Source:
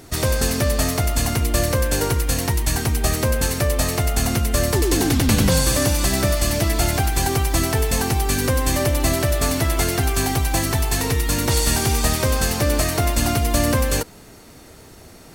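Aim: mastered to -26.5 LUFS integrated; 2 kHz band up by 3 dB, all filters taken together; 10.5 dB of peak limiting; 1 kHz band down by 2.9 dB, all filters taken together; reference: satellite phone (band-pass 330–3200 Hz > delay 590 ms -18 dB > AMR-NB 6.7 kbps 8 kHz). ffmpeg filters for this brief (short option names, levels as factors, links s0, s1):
-af "equalizer=f=1000:t=o:g=-5.5,equalizer=f=2000:t=o:g=6,alimiter=limit=0.2:level=0:latency=1,highpass=330,lowpass=3200,aecho=1:1:590:0.126,volume=1.78" -ar 8000 -c:a libopencore_amrnb -b:a 6700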